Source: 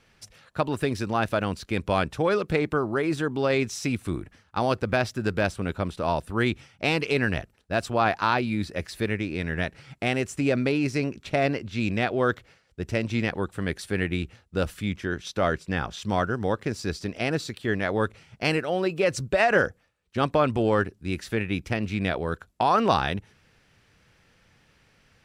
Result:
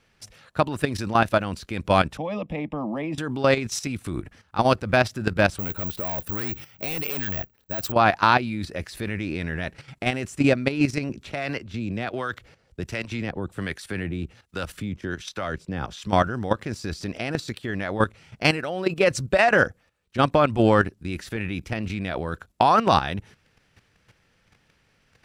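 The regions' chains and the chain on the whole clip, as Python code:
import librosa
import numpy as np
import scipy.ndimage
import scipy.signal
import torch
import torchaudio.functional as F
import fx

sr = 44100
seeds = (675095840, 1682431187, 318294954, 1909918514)

y = fx.chain(x, sr, fx.savgol(points=25),
    fx.fixed_phaser(hz=390.0, stages=6),
    fx.band_squash(depth_pct=40), at=(2.17, 3.18))
y = fx.chain(y, sr, fx.clip_hard(threshold_db=-26.0),
    fx.resample_bad(factor=2, down='filtered', up='zero_stuff'), at=(5.59, 7.92))
y = fx.chain(y, sr, fx.harmonic_tremolo(hz=1.3, depth_pct=70, crossover_hz=870.0),
    fx.band_squash(depth_pct=40), at=(11.09, 16.07))
y = fx.dynamic_eq(y, sr, hz=430.0, q=4.3, threshold_db=-38.0, ratio=4.0, max_db=-5)
y = fx.level_steps(y, sr, step_db=12)
y = y * 10.0 ** (7.5 / 20.0)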